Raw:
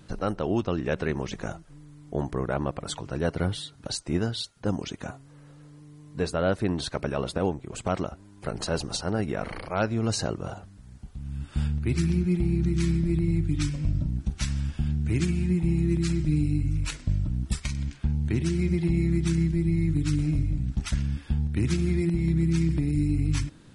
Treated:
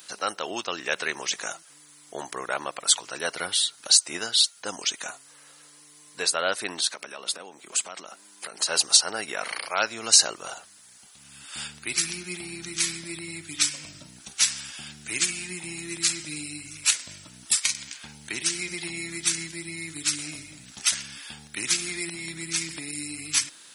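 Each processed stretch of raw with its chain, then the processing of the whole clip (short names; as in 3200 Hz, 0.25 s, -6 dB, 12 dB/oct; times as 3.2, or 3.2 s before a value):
6.79–8.69 compressor 12:1, threshold -33 dBFS + resonant low shelf 130 Hz -11.5 dB, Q 1.5
whole clip: HPF 700 Hz 6 dB/oct; tilt +4.5 dB/oct; gain +4.5 dB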